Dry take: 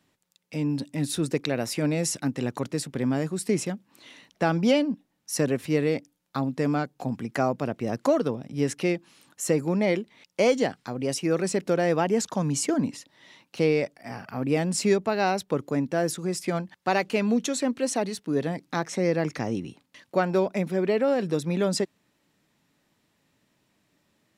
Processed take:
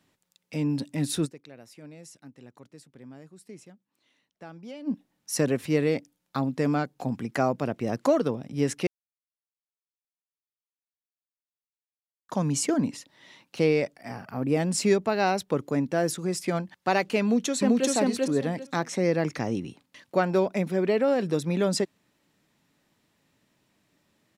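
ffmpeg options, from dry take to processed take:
-filter_complex "[0:a]asettb=1/sr,asplit=3[s0][s1][s2];[s0]atrim=end=14.124[s3];[s1]atrim=start=14.12:end=14.6,asetpts=PTS-STARTPTS,afade=t=in:d=0.004:c=qsin,afade=t=out:st=0.476:d=0.004:c=qsin,equalizer=f=3200:t=o:w=2.3:g=-5[s4];[s2]atrim=start=14.596[s5];[s3][s4]acrossfade=d=0.004:c1=hsin:c2=qsin[s6];[s6][s5]acrossfade=d=0.004:c1=qsin:c2=hsin,asplit=2[s7][s8];[s8]afade=t=in:st=17.22:d=0.01,afade=t=out:st=17.88:d=0.01,aecho=0:1:390|780|1170:0.944061|0.188812|0.0377624[s9];[s7][s9]amix=inputs=2:normalize=0,asplit=5[s10][s11][s12][s13][s14];[s10]atrim=end=1.46,asetpts=PTS-STARTPTS,afade=t=out:st=1.25:d=0.21:c=exp:silence=0.0944061[s15];[s11]atrim=start=1.46:end=4.67,asetpts=PTS-STARTPTS,volume=0.0944[s16];[s12]atrim=start=4.67:end=8.87,asetpts=PTS-STARTPTS,afade=t=in:d=0.21:c=exp:silence=0.0944061,afade=t=out:st=4.196:d=0.004:c=hsin[s17];[s13]atrim=start=8.87:end=12.29,asetpts=PTS-STARTPTS,volume=0[s18];[s14]atrim=start=12.29,asetpts=PTS-STARTPTS,afade=t=in:d=0.004:c=hsin[s19];[s15][s16][s17][s18][s19]concat=n=5:v=0:a=1"

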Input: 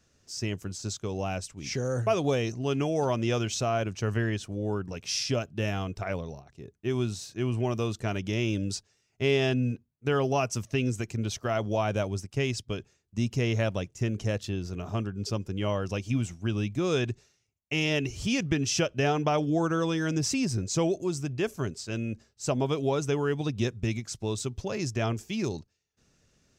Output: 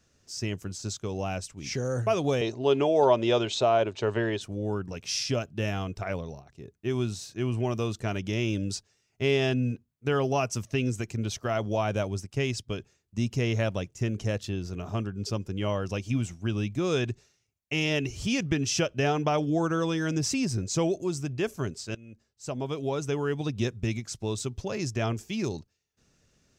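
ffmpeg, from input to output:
-filter_complex "[0:a]asettb=1/sr,asplit=3[s0][s1][s2];[s0]atrim=end=2.414[s3];[s1]atrim=start=2.41:end=4.41,asetpts=PTS-STARTPTS,afade=t=in:d=0.004:c=qsin,afade=t=out:st=1.996:d=0.004:c=qsin,highpass=130,equalizer=f=180:t=q:w=4:g=-10,equalizer=f=400:t=q:w=4:g=8,equalizer=f=600:t=q:w=4:g=8,equalizer=f=920:t=q:w=4:g=9,equalizer=f=3700:t=q:w=4:g=10,equalizer=f=5800:t=q:w=4:g=-8,lowpass=f=7700:w=0.5412,lowpass=f=7700:w=1.3066[s4];[s2]atrim=start=4.406[s5];[s3][s4]acrossfade=d=0.004:c1=hsin:c2=qsin[s6];[s6][s5]acrossfade=d=0.004:c1=qsin:c2=hsin,asplit=2[s7][s8];[s7]atrim=end=21.95,asetpts=PTS-STARTPTS,afade=t=out:st=21.946:d=0.004:c=hsin:silence=0.0841395[s9];[s8]atrim=start=21.95,asetpts=PTS-STARTPTS,afade=t=in:d=1.96:c=qsin:silence=0.0841395[s10];[s9][s10]concat=n=2:v=0:a=1"

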